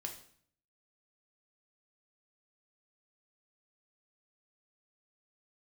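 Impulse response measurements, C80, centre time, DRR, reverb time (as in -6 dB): 12.5 dB, 18 ms, 2.0 dB, 0.60 s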